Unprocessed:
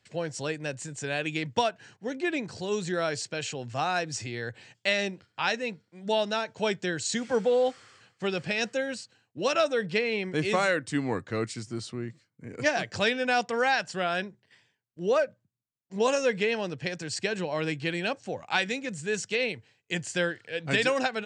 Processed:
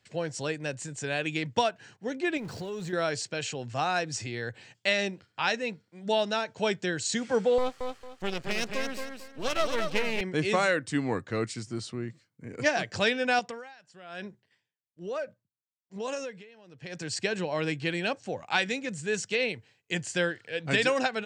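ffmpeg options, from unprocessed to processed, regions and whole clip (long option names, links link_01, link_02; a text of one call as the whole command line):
ffmpeg -i in.wav -filter_complex "[0:a]asettb=1/sr,asplit=3[link_01][link_02][link_03];[link_01]atrim=end=2.374[link_04];[link_02]atrim=start=2.37:end=2.93,asetpts=PTS-STARTPTS,afade=type=in:duration=0.004:curve=qsin,afade=type=out:start_time=0.556:duration=0.004:curve=qsin,aeval=exprs='val(0)+0.5*0.01*sgn(val(0))':channel_layout=same,acompressor=threshold=-32dB:ratio=6:attack=3.2:release=140:knee=1:detection=peak,highshelf=frequency=3300:gain=-7.5[link_05];[link_03]atrim=start=2.926[link_06];[link_04][link_05]acrossfade=duration=0.004:curve1=hsin:curve2=qsin[link_07];[link_07][link_06]acrossfade=duration=0.004:curve1=qsin:curve2=hsin,asettb=1/sr,asplit=3[link_08][link_09][link_10];[link_08]atrim=end=7.584[link_11];[link_09]atrim=start=7.58:end=10.21,asetpts=PTS-STARTPTS,afade=type=in:duration=0.004:curve=qsin,afade=type=out:start_time=2.626:duration=0.004:curve=qsin,aeval=exprs='max(val(0),0)':channel_layout=same,aecho=1:1:225|450|675|900:0.531|0.143|0.0387|0.0104,atrim=end_sample=115983[link_12];[link_10]atrim=start=10.206[link_13];[link_11][link_12]acrossfade=duration=0.004:curve1=hsin:curve2=qsin[link_14];[link_14][link_13]acrossfade=duration=0.004:curve1=qsin:curve2=hsin,asettb=1/sr,asplit=3[link_15][link_16][link_17];[link_15]atrim=end=13.394[link_18];[link_16]atrim=start=13.39:end=17.01,asetpts=PTS-STARTPTS,afade=type=in:duration=0.004:curve=qsin,afade=type=out:start_time=3.616:duration=0.004:curve=qsin,acompressor=threshold=-30dB:ratio=4:attack=3.2:release=140:knee=1:detection=peak,aeval=exprs='val(0)*pow(10,-20*(0.5-0.5*cos(2*PI*1.1*n/s))/20)':channel_layout=same[link_19];[link_17]atrim=start=17.006[link_20];[link_18][link_19]acrossfade=duration=0.004:curve1=hsin:curve2=qsin[link_21];[link_21][link_20]acrossfade=duration=0.004:curve1=qsin:curve2=hsin" out.wav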